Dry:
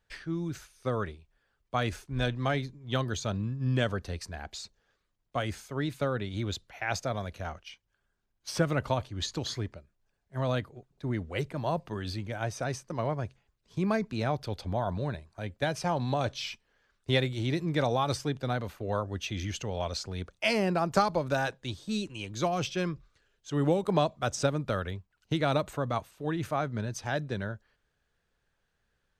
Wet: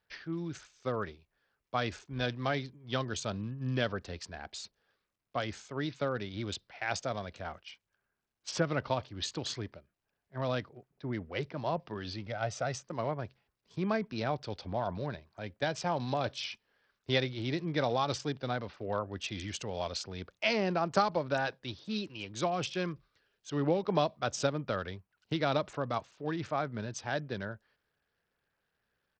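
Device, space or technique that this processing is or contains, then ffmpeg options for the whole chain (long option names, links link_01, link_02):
Bluetooth headset: -filter_complex "[0:a]asettb=1/sr,asplit=3[link_01][link_02][link_03];[link_01]atrim=end=12.264[link_04];[link_02]atrim=start=12.26:end=12.82,asetpts=PTS-STARTPTS,afade=type=in:duration=0.004:curve=qsin,afade=type=out:start_time=0.556:duration=0.004:curve=qsin,aecho=1:1:1.5:0.52,atrim=end_sample=24696[link_05];[link_03]atrim=start=12.816[link_06];[link_04][link_05]acrossfade=duration=0.004:curve1=hsin:curve2=qsin[link_07];[link_07][link_06]acrossfade=duration=0.004:curve1=qsin:curve2=hsin,highpass=frequency=160:poles=1,aresample=16000,aresample=44100,volume=-2dB" -ar 44100 -c:a sbc -b:a 64k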